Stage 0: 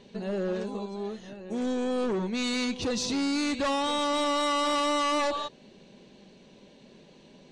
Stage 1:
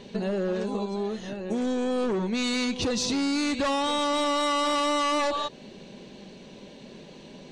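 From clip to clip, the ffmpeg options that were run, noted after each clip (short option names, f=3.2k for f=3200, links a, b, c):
-af "acompressor=threshold=-33dB:ratio=6,volume=8dB"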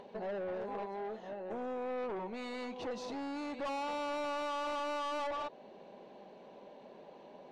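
-af "bandpass=f=760:t=q:w=2:csg=0,aeval=exprs='(tanh(63.1*val(0)+0.15)-tanh(0.15))/63.1':c=same,acompressor=mode=upward:threshold=-51dB:ratio=2.5,volume=1dB"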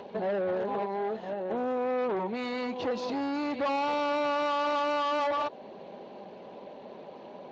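-af "volume=8.5dB" -ar 16000 -c:a libspeex -b:a 21k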